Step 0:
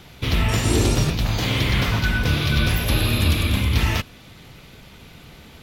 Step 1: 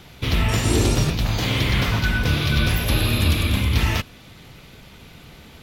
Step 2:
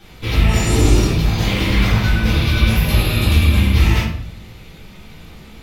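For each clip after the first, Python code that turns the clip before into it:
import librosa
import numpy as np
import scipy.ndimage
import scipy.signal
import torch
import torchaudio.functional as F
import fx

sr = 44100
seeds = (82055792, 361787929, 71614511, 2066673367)

y1 = x
y2 = fx.room_shoebox(y1, sr, seeds[0], volume_m3=100.0, walls='mixed', distance_m=2.1)
y2 = y2 * 10.0 ** (-6.0 / 20.0)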